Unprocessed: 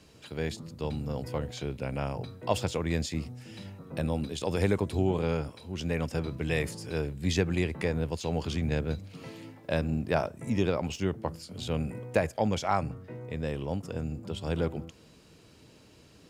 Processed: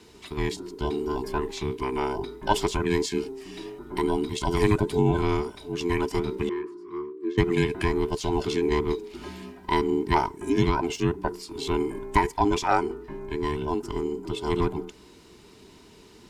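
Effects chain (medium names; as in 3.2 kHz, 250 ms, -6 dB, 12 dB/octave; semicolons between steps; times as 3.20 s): every band turned upside down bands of 500 Hz; 6.49–7.38 s: two resonant band-passes 630 Hz, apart 1.7 oct; trim +5 dB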